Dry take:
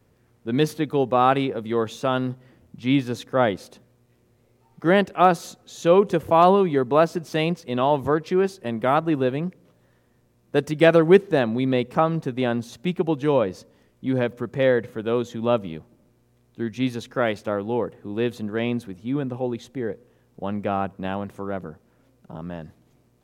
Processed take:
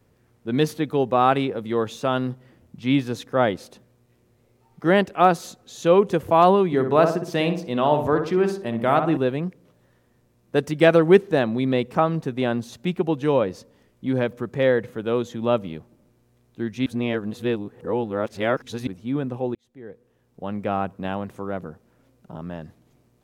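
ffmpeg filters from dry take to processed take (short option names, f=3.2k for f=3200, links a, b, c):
-filter_complex "[0:a]asettb=1/sr,asplit=3[a][b][c];[a]atrim=end=6.664[d];[b]atrim=start=6.66:end=9.17,asetpts=PTS-STARTPTS,afade=t=in:d=0.004:c=qsin,afade=t=out:st=2.506:d=0.004:c=qsin,asplit=2[e][f];[f]adelay=61,lowpass=f=1.7k:p=1,volume=-6dB,asplit=2[g][h];[h]adelay=61,lowpass=f=1.7k:p=1,volume=0.49,asplit=2[i][j];[j]adelay=61,lowpass=f=1.7k:p=1,volume=0.49,asplit=2[k][l];[l]adelay=61,lowpass=f=1.7k:p=1,volume=0.49,asplit=2[m][n];[n]adelay=61,lowpass=f=1.7k:p=1,volume=0.49,asplit=2[o][p];[p]adelay=61,lowpass=f=1.7k:p=1,volume=0.49[q];[e][g][i][k][m][o][q]amix=inputs=7:normalize=0,atrim=end_sample=110691[r];[c]atrim=start=9.166[s];[d][r]acrossfade=d=0.004:c1=hsin:c2=qsin[t];[t][s]acrossfade=d=0.004:c1=qsin:c2=hsin,asplit=4[u][v][w][x];[u]atrim=end=16.862[y];[v]atrim=start=16.858:end=18.872,asetpts=PTS-STARTPTS,areverse[z];[w]atrim=start=18.868:end=19.55,asetpts=PTS-STARTPTS,afade=t=out:st=0.678:d=0.004:c=hsin[aa];[x]atrim=start=19.55,asetpts=PTS-STARTPTS,afade=t=in:d=1.17[ab];[y][z]acrossfade=d=0.004:c1=hsin:c2=hsin[ac];[aa][ab]concat=n=2:v=0:a=1[ad];[ac][ad]acrossfade=d=0.004:c1=hsin:c2=hsin"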